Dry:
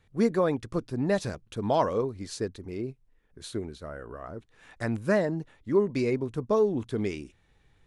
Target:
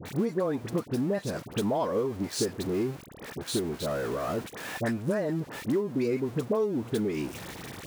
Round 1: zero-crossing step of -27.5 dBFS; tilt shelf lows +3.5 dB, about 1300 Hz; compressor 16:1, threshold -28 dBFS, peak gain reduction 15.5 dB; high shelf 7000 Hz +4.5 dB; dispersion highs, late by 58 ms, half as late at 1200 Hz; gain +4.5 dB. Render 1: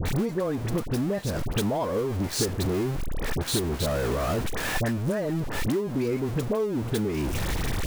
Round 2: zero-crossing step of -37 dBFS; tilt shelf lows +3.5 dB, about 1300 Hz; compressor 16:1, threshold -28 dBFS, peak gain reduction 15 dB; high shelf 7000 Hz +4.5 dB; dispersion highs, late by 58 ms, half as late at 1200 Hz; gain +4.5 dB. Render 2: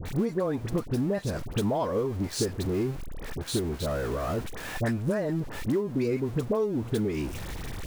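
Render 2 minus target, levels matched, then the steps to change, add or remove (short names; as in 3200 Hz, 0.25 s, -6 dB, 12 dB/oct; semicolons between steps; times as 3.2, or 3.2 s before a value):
125 Hz band +3.5 dB
add after compressor: HPF 150 Hz 12 dB/oct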